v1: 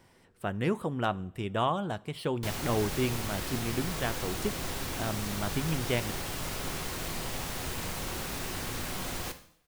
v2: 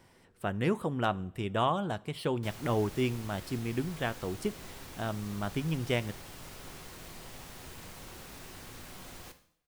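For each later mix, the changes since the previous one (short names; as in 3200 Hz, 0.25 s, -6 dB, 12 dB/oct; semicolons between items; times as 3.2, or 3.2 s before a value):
background -11.5 dB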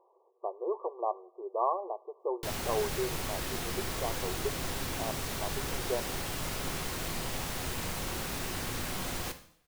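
speech: add brick-wall FIR band-pass 350–1200 Hz; background +11.5 dB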